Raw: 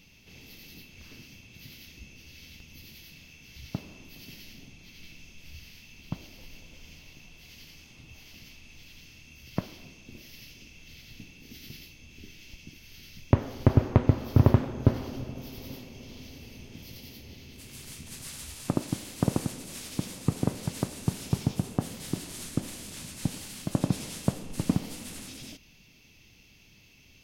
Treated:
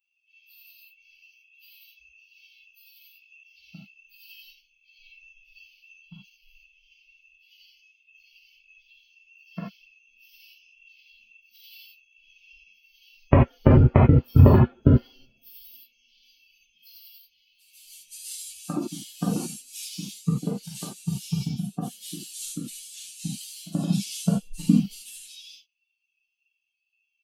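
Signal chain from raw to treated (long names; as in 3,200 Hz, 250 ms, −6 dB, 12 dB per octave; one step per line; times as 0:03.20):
spectral dynamics exaggerated over time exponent 3
reverb whose tail is shaped and stops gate 110 ms flat, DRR −5 dB
level +7 dB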